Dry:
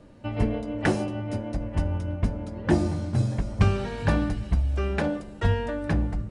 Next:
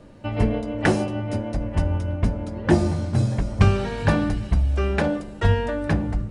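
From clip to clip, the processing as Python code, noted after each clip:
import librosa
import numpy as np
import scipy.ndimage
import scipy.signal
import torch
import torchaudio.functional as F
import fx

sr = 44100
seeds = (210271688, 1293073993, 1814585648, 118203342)

y = fx.hum_notches(x, sr, base_hz=60, count=5)
y = y * 10.0 ** (4.5 / 20.0)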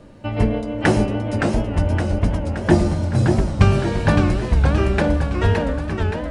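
y = fx.fade_out_tail(x, sr, length_s=0.99)
y = fx.echo_warbled(y, sr, ms=568, feedback_pct=53, rate_hz=2.8, cents=159, wet_db=-4.5)
y = y * 10.0 ** (2.5 / 20.0)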